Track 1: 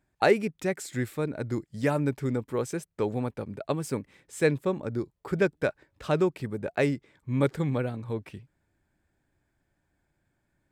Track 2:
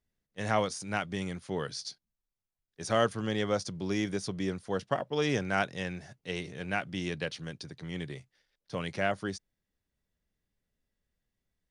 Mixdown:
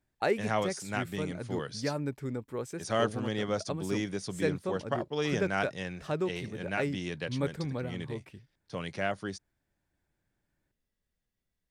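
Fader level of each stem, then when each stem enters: -7.0 dB, -2.0 dB; 0.00 s, 0.00 s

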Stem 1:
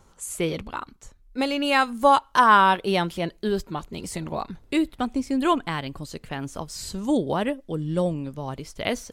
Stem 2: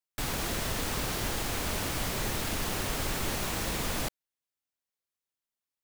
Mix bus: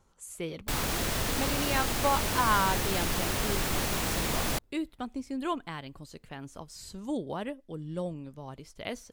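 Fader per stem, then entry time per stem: -10.5 dB, +2.0 dB; 0.00 s, 0.50 s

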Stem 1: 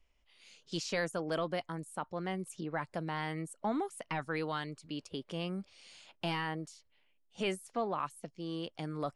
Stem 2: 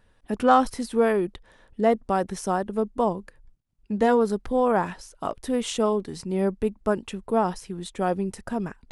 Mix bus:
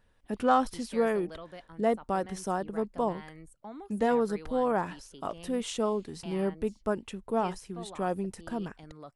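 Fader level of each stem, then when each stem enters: -10.5 dB, -6.0 dB; 0.00 s, 0.00 s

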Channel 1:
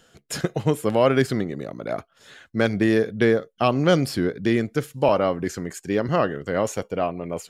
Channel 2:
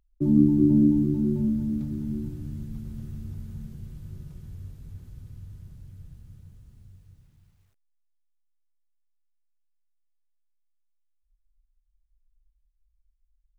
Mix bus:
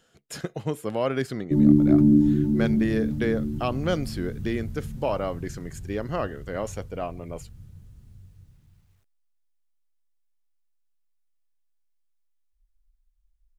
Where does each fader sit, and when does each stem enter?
-7.5 dB, +2.0 dB; 0.00 s, 1.30 s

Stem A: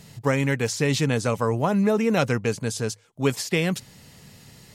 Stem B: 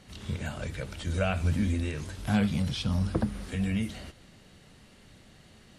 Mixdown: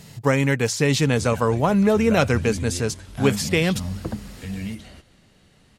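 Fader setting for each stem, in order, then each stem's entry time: +3.0 dB, -1.5 dB; 0.00 s, 0.90 s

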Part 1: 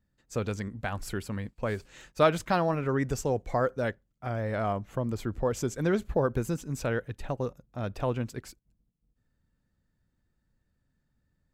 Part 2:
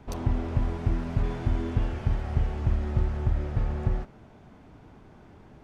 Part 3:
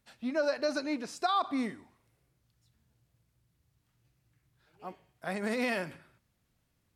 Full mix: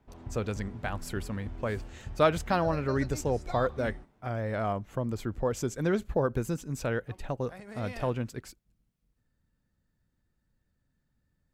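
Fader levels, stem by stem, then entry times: -1.0 dB, -15.5 dB, -12.0 dB; 0.00 s, 0.00 s, 2.25 s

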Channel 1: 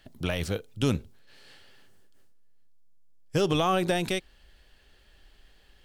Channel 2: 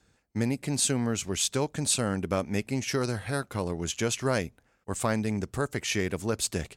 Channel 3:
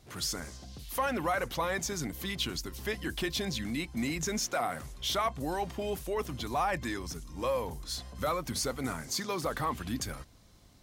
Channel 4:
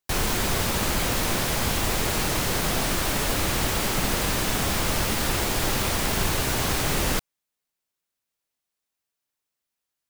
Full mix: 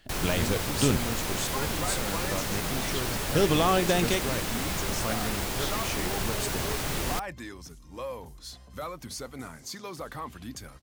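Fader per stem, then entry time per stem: +1.0 dB, -7.0 dB, -5.5 dB, -6.5 dB; 0.00 s, 0.00 s, 0.55 s, 0.00 s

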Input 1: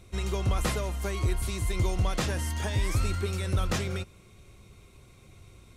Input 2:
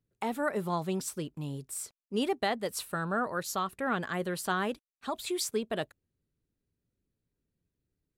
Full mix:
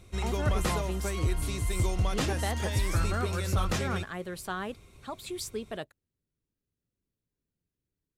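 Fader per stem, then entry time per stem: -1.0 dB, -4.5 dB; 0.00 s, 0.00 s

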